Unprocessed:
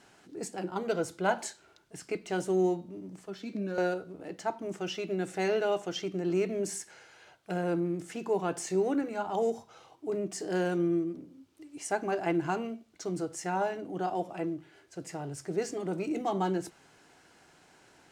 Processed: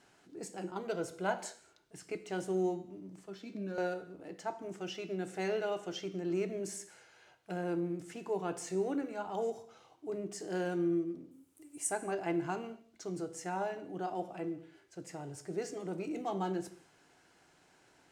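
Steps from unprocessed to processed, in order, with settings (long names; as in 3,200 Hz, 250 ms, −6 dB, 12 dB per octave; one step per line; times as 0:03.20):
0:11.31–0:11.91: high shelf with overshoot 6,700 Hz +11.5 dB, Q 1.5
reverb whose tail is shaped and stops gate 260 ms falling, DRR 11.5 dB
level −6 dB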